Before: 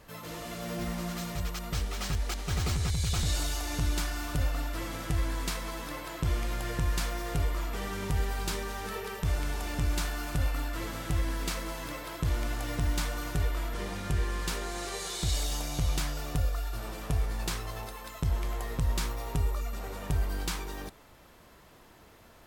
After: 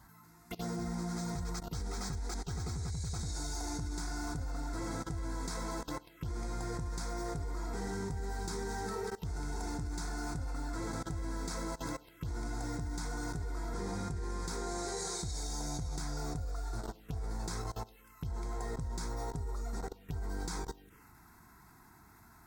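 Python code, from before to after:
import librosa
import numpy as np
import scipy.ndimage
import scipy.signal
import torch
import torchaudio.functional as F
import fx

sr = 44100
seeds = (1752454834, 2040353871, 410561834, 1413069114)

y = fx.notch_comb(x, sr, f0_hz=590.0)
y = fx.level_steps(y, sr, step_db=20)
y = fx.env_phaser(y, sr, low_hz=420.0, high_hz=2900.0, full_db=-37.5)
y = F.gain(torch.from_numpy(y), 3.5).numpy()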